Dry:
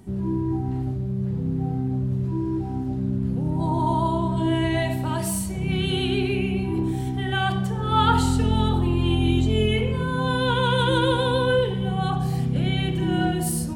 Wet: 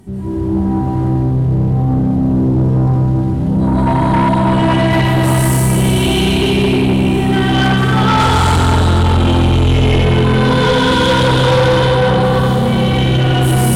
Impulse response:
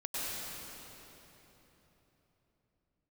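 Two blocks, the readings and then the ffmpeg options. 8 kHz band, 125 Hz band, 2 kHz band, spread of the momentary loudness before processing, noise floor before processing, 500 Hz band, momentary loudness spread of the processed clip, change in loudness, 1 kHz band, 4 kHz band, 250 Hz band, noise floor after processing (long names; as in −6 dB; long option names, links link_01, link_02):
+9.5 dB, +11.5 dB, +11.0 dB, 6 LU, −27 dBFS, +10.5 dB, 4 LU, +11.0 dB, +10.5 dB, +10.5 dB, +10.5 dB, −15 dBFS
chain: -filter_complex "[1:a]atrim=start_sample=2205,asetrate=34839,aresample=44100[link_01];[0:a][link_01]afir=irnorm=-1:irlink=0,asoftclip=type=tanh:threshold=-16.5dB,volume=8.5dB"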